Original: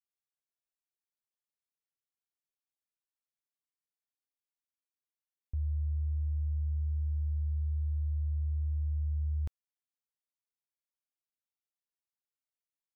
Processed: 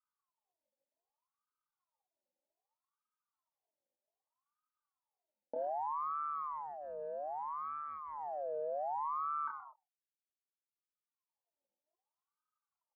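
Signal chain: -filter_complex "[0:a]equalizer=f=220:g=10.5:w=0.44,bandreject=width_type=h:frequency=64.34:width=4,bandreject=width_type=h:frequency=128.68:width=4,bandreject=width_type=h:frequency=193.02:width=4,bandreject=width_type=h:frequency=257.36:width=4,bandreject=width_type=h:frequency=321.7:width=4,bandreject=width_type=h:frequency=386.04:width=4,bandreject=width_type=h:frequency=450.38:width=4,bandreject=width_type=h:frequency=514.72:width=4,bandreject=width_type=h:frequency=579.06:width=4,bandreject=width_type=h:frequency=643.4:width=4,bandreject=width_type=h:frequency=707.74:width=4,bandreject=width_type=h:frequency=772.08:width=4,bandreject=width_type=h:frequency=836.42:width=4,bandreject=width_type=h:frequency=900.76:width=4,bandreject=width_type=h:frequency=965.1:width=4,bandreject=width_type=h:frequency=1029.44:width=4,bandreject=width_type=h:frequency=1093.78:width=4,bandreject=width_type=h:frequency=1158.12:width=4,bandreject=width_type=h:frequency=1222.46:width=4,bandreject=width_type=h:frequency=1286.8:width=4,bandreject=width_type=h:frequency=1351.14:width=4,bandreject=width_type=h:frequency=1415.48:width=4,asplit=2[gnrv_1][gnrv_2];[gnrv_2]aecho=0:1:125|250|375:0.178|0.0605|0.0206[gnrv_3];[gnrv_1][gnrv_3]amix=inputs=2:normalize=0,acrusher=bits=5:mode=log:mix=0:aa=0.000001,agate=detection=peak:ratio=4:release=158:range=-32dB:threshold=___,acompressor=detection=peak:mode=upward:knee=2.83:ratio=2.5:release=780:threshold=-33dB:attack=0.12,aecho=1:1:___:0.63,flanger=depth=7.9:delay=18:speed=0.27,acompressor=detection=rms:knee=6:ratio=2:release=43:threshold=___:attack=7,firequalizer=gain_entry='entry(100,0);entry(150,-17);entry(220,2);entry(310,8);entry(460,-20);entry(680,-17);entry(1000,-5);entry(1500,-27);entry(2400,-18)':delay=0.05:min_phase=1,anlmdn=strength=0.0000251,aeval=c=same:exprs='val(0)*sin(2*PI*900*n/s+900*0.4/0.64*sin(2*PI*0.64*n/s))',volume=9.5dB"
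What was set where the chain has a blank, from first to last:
-51dB, 6, -50dB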